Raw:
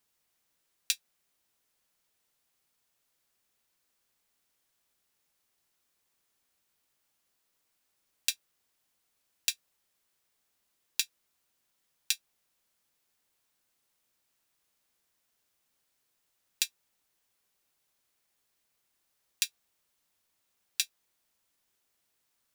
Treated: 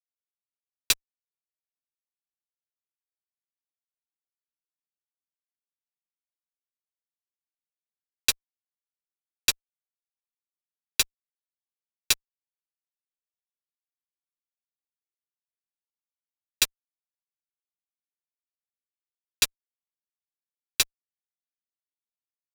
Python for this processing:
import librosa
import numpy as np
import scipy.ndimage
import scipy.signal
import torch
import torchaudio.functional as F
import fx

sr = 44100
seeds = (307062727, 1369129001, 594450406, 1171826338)

y = fx.fuzz(x, sr, gain_db=35.0, gate_db=-34.0)